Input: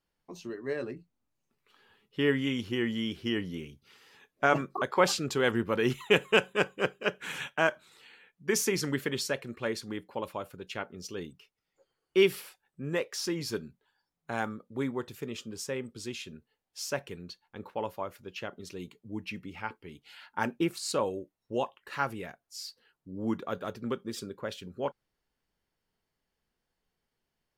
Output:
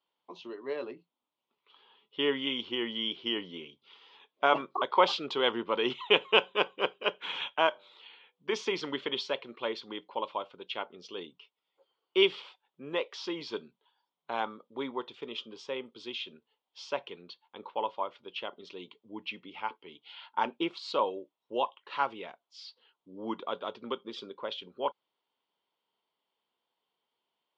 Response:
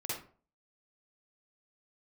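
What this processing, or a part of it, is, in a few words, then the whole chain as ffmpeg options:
phone earpiece: -filter_complex "[0:a]highpass=360,equalizer=f=980:t=q:w=4:g=8,equalizer=f=1.7k:t=q:w=4:g=-9,equalizer=f=3.3k:t=q:w=4:g=10,lowpass=f=4.2k:w=0.5412,lowpass=f=4.2k:w=1.3066,asettb=1/sr,asplit=3[a][b][c];[a]atrim=end=7.694[d];[b]atrim=start=7.69:end=8.53,asetpts=PTS-STARTPTS,afade=t=in:d=0.004:c=qsin,afade=t=out:st=0.836:d=0.004:c=qsin,bandreject=f=98.32:t=h:w=4,bandreject=f=196.64:t=h:w=4,bandreject=f=294.96:t=h:w=4,bandreject=f=393.28:t=h:w=4,bandreject=f=491.6:t=h:w=4,bandreject=f=589.92:t=h:w=4,bandreject=f=688.24:t=h:w=4,bandreject=f=786.56:t=h:w=4,bandreject=f=884.88:t=h:w=4[e];[c]atrim=start=8.526[f];[d][e]acrossfade=d=0.004:c1=hsin:c2=qsin[g];[g][f]acrossfade=d=0.004:c1=qsin:c2=hsin,highshelf=f=11k:g=-6"

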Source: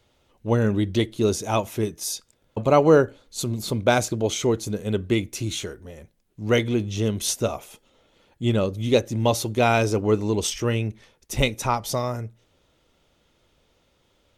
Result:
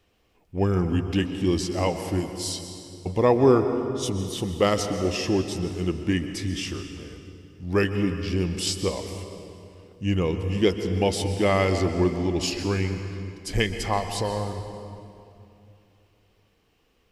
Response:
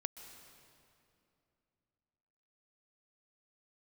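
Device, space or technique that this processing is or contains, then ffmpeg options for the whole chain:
slowed and reverbed: -filter_complex "[0:a]asetrate=37044,aresample=44100[a];[1:a]atrim=start_sample=2205[b];[a][b]afir=irnorm=-1:irlink=0"

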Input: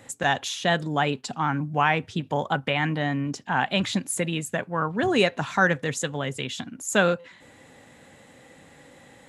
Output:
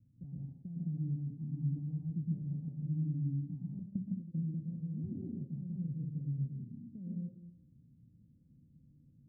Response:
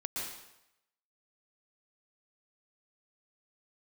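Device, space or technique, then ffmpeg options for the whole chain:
club heard from the street: -filter_complex "[0:a]alimiter=limit=-14.5dB:level=0:latency=1:release=97,lowpass=f=180:w=0.5412,lowpass=f=180:w=1.3066[a];[1:a]atrim=start_sample=2205[b];[a][b]afir=irnorm=-1:irlink=0,asettb=1/sr,asplit=3[c][d][e];[c]atrim=end=3.794[f];[d]atrim=start=3.79:end=4.36,asetpts=PTS-STARTPTS,afade=t=in:d=0.004:c=qsin,afade=t=out:st=0.566:d=0.004:c=qsin,agate=range=-33dB:threshold=-30dB:ratio=3:detection=peak[g];[e]atrim=start=4.356[h];[f][g]acrossfade=d=0.004:c1=hsin:c2=qsin[i];[i][h]acrossfade=d=0.004:c1=qsin:c2=hsin,volume=-4.5dB"

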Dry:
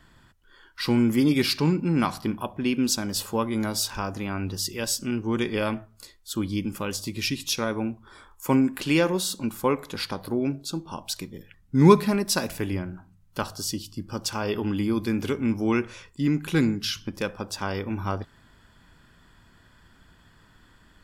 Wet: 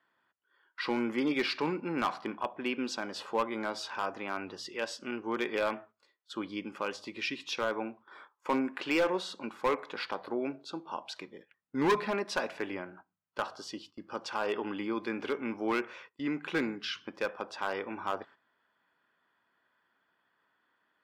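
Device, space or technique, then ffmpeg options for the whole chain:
walkie-talkie: -af "highpass=480,lowpass=2.5k,asoftclip=type=hard:threshold=-22dB,agate=range=-13dB:threshold=-52dB:ratio=16:detection=peak"

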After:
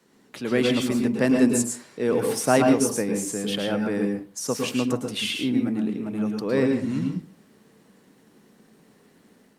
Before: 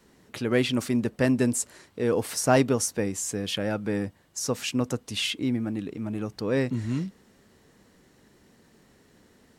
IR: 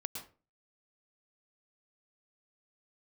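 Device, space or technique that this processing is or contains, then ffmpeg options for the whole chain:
far-field microphone of a smart speaker: -filter_complex "[1:a]atrim=start_sample=2205[a];[0:a][a]afir=irnorm=-1:irlink=0,highpass=f=140:w=0.5412,highpass=f=140:w=1.3066,dynaudnorm=f=350:g=3:m=4dB" -ar 48000 -c:a libopus -b:a 48k

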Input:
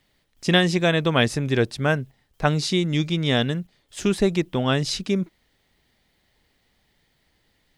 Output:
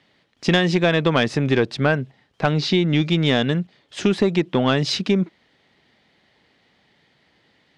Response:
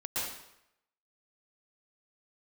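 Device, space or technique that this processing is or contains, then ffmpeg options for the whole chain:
AM radio: -filter_complex "[0:a]highpass=140,lowpass=4.2k,acompressor=threshold=-21dB:ratio=4,asoftclip=type=tanh:threshold=-14.5dB,asettb=1/sr,asplit=3[a][b][c];[a]atrim=end=2.514[d];[b]atrim=start=2.51:end=3.02,asetpts=PTS-STARTPTS,afade=t=in:d=0.004:c=qsin,afade=t=out:st=0.506:d=0.004:c=qsin,lowpass=5.3k[e];[c]atrim=start=3.016[f];[d][e]acrossfade=d=0.004:c1=hsin:c2=qsin[g];[g][f]acrossfade=d=0.004:c1=qsin:c2=hsin,volume=8dB"

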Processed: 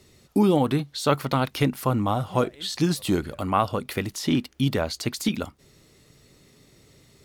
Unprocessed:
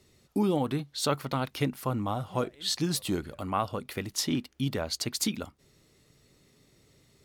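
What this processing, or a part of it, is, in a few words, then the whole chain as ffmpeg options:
de-esser from a sidechain: -filter_complex "[0:a]asplit=2[a][b];[b]highpass=4.2k,apad=whole_len=319607[c];[a][c]sidechaincompress=threshold=-38dB:ratio=10:attack=3.7:release=28,volume=7dB"

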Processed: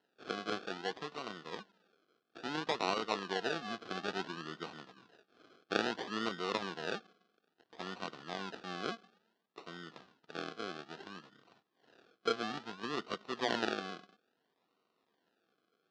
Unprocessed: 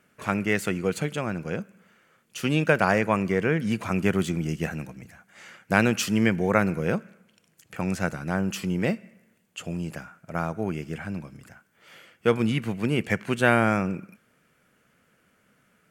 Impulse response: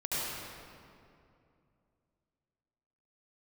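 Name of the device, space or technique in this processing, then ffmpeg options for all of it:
circuit-bent sampling toy: -af "acrusher=samples=37:mix=1:aa=0.000001:lfo=1:lforange=22.2:lforate=0.59,highpass=480,equalizer=f=570:t=q:w=4:g=-10,equalizer=f=880:t=q:w=4:g=-6,equalizer=f=2.2k:t=q:w=4:g=-9,lowpass=f=4.7k:w=0.5412,lowpass=f=4.7k:w=1.3066,volume=-5.5dB"

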